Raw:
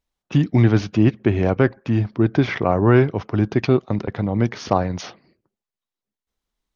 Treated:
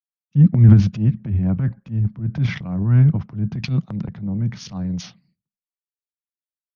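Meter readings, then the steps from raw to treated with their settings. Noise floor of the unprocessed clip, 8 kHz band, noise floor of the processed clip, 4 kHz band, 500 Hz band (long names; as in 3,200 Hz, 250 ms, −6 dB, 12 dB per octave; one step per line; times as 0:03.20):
below −85 dBFS, can't be measured, below −85 dBFS, −3.5 dB, −18.0 dB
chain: low shelf with overshoot 260 Hz +13.5 dB, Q 3
transient designer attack −7 dB, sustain +9 dB
multiband upward and downward expander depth 100%
level −14.5 dB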